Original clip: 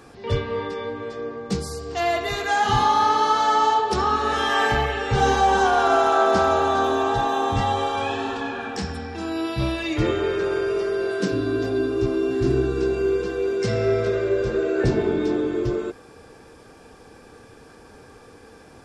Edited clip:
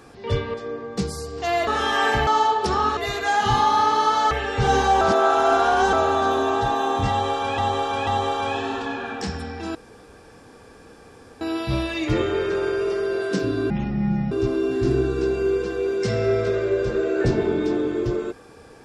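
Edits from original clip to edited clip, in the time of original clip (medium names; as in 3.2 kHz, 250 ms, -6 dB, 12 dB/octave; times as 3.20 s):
0.54–1.07 s: delete
2.20–3.54 s: swap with 4.24–4.84 s
5.54–6.46 s: reverse
7.62–8.11 s: loop, 3 plays
9.30 s: insert room tone 1.66 s
11.59–11.91 s: speed 52%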